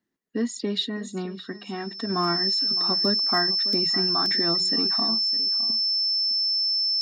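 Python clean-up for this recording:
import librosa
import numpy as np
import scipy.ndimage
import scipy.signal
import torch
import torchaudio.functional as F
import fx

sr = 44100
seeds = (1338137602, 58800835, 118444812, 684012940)

y = fx.fix_declip(x, sr, threshold_db=-13.5)
y = fx.notch(y, sr, hz=5300.0, q=30.0)
y = fx.fix_interpolate(y, sr, at_s=(3.73, 4.26), length_ms=1.2)
y = fx.fix_echo_inverse(y, sr, delay_ms=611, level_db=-16.0)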